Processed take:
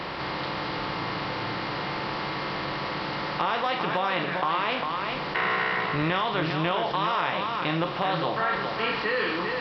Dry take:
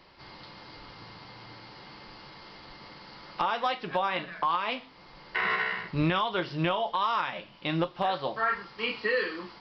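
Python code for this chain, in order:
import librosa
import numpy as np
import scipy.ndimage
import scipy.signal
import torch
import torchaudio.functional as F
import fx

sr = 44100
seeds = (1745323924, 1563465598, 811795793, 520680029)

y = fx.bin_compress(x, sr, power=0.6)
y = scipy.signal.sosfilt(scipy.signal.butter(2, 41.0, 'highpass', fs=sr, output='sos'), y)
y = y + 10.0 ** (-7.5 / 20.0) * np.pad(y, (int(401 * sr / 1000.0), 0))[:len(y)]
y = fx.env_flatten(y, sr, amount_pct=50)
y = y * 10.0 ** (-3.0 / 20.0)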